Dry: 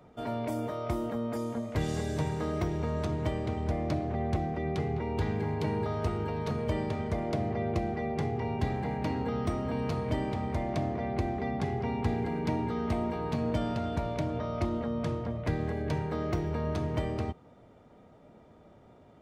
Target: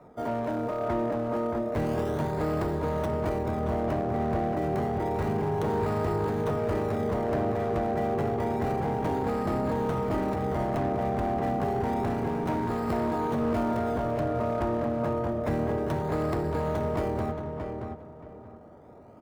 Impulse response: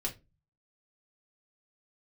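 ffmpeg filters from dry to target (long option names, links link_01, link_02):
-filter_complex "[0:a]lowpass=8300,lowshelf=frequency=210:gain=-8,acrossover=split=330|1800[link_01][link_02][link_03];[link_03]acrusher=samples=28:mix=1:aa=0.000001:lfo=1:lforange=28:lforate=0.29[link_04];[link_01][link_02][link_04]amix=inputs=3:normalize=0,volume=31.5dB,asoftclip=hard,volume=-31.5dB,asplit=2[link_05][link_06];[link_06]adelay=626,lowpass=frequency=2500:poles=1,volume=-5dB,asplit=2[link_07][link_08];[link_08]adelay=626,lowpass=frequency=2500:poles=1,volume=0.25,asplit=2[link_09][link_10];[link_10]adelay=626,lowpass=frequency=2500:poles=1,volume=0.25[link_11];[link_05][link_07][link_09][link_11]amix=inputs=4:normalize=0,volume=6.5dB"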